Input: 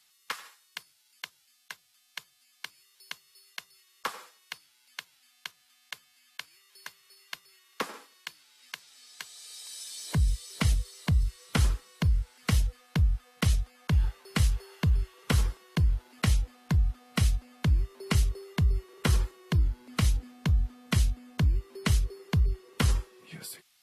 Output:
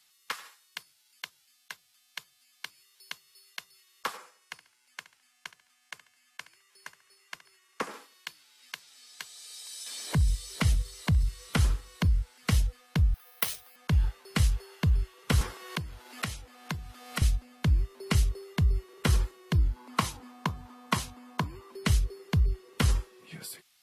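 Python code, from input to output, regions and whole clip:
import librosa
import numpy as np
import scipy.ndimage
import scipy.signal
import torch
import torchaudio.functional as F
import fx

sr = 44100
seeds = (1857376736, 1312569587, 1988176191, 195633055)

y = fx.chain(x, sr, fx.lowpass(hz=9900.0, slope=12),
    fx.peak_eq(hz=3800.0, db=-7.5, octaves=0.89),
    fx.echo_feedback(ms=70, feedback_pct=34, wet_db=-15.5), at=(4.17, 7.91))
y = fx.chain(y, sr, fx.echo_feedback(ms=65, feedback_pct=44, wet_db=-24.0),
    fx.band_squash(depth_pct=40), at=(9.86, 12.05))
y = fx.chain(y, sr, fx.highpass(hz=550.0, slope=12),
    fx.resample_bad(factor=3, down='filtered', up='zero_stuff'), at=(13.14, 13.76))
y = fx.chain(y, sr, fx.highpass(hz=420.0, slope=6),
    fx.band_squash(depth_pct=100), at=(15.41, 17.22))
y = fx.chain(y, sr, fx.highpass(hz=180.0, slope=12),
    fx.peak_eq(hz=1000.0, db=13.0, octaves=0.74), at=(19.76, 21.72))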